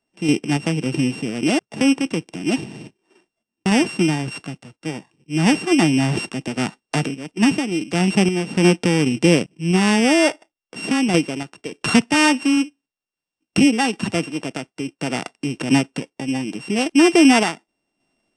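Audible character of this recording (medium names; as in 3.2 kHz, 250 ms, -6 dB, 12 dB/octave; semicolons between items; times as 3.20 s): a buzz of ramps at a fixed pitch in blocks of 16 samples; random-step tremolo; AAC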